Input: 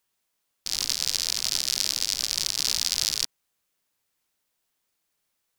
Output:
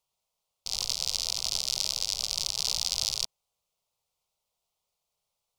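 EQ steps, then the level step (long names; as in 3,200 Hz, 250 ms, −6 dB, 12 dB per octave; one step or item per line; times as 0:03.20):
high-shelf EQ 7,400 Hz −12 dB
phaser with its sweep stopped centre 700 Hz, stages 4
+1.5 dB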